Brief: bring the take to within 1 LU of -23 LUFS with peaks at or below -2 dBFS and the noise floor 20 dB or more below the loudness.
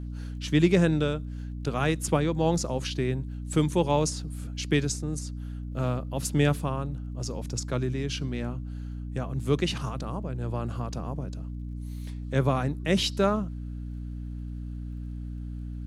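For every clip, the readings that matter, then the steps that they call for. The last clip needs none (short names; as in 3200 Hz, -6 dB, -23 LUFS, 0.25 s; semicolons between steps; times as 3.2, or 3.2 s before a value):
ticks 20/s; hum 60 Hz; harmonics up to 300 Hz; hum level -33 dBFS; loudness -29.0 LUFS; peak -9.0 dBFS; loudness target -23.0 LUFS
-> de-click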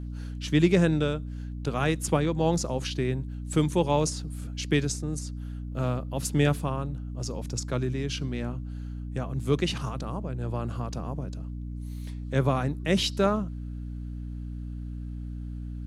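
ticks 0/s; hum 60 Hz; harmonics up to 300 Hz; hum level -33 dBFS
-> notches 60/120/180/240/300 Hz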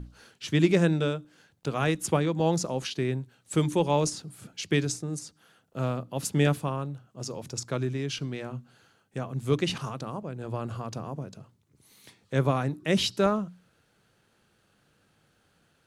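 hum none; loudness -29.0 LUFS; peak -9.0 dBFS; loudness target -23.0 LUFS
-> gain +6 dB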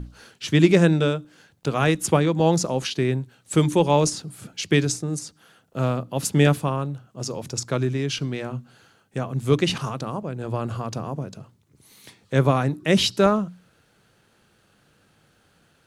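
loudness -23.0 LUFS; peak -3.0 dBFS; noise floor -62 dBFS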